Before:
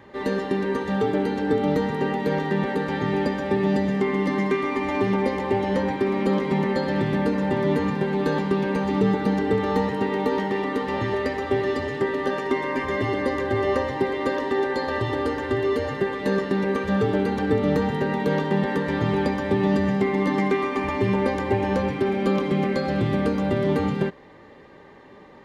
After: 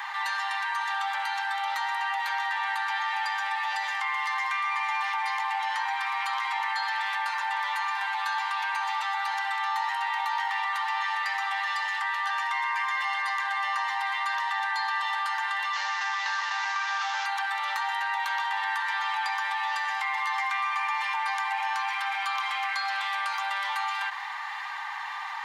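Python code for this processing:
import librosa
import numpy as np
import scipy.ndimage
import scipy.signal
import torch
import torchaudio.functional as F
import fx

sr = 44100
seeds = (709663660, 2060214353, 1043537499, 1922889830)

y = fx.cvsd(x, sr, bps=32000, at=(15.73, 17.26))
y = scipy.signal.sosfilt(scipy.signal.butter(12, 810.0, 'highpass', fs=sr, output='sos'), y)
y = fx.env_flatten(y, sr, amount_pct=70)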